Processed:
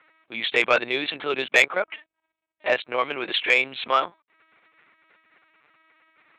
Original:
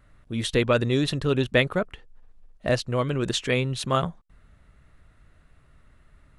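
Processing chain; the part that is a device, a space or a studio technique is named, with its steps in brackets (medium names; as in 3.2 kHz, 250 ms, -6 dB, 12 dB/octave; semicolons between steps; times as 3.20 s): talking toy (LPC vocoder at 8 kHz pitch kept; high-pass 630 Hz 12 dB/octave; peaking EQ 2.3 kHz +10 dB 0.27 oct; saturation -11 dBFS, distortion -16 dB); trim +5.5 dB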